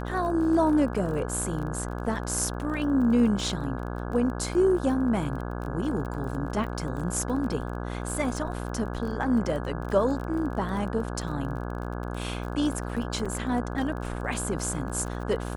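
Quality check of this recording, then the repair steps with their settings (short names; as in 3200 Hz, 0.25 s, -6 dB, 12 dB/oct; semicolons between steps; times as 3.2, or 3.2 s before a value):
buzz 60 Hz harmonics 28 -33 dBFS
crackle 29/s -34 dBFS
13.25–13.26 gap 5.5 ms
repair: de-click; de-hum 60 Hz, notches 28; interpolate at 13.25, 5.5 ms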